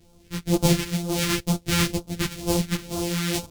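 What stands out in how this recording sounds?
a buzz of ramps at a fixed pitch in blocks of 256 samples; phasing stages 2, 2.1 Hz, lowest notch 630–1800 Hz; tremolo saw up 1.4 Hz, depth 30%; a shimmering, thickened sound

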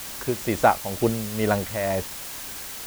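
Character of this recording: tremolo triangle 2.1 Hz, depth 70%; a quantiser's noise floor 6-bit, dither triangular

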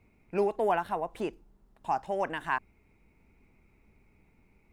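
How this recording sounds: noise floor -66 dBFS; spectral tilt -4.0 dB/oct

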